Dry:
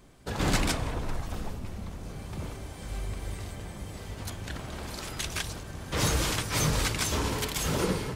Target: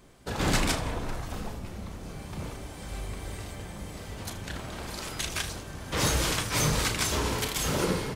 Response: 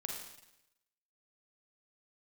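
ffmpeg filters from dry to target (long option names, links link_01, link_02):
-filter_complex "[0:a]lowshelf=frequency=180:gain=-3,asplit=2[link_01][link_02];[link_02]aecho=0:1:34|78:0.355|0.178[link_03];[link_01][link_03]amix=inputs=2:normalize=0,volume=1dB"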